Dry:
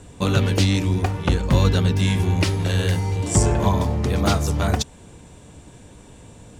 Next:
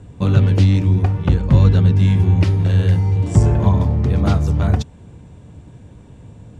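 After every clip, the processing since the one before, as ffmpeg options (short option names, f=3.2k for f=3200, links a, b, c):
-af "lowpass=f=2.5k:p=1,equalizer=f=110:w=0.62:g=10,volume=-2.5dB"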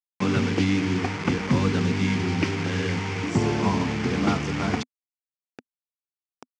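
-af "acrusher=bits=4:mix=0:aa=0.000001,highpass=250,equalizer=f=250:t=q:w=4:g=5,equalizer=f=590:t=q:w=4:g=-9,equalizer=f=2.2k:t=q:w=4:g=5,equalizer=f=3.9k:t=q:w=4:g=-7,lowpass=f=5.9k:w=0.5412,lowpass=f=5.9k:w=1.3066"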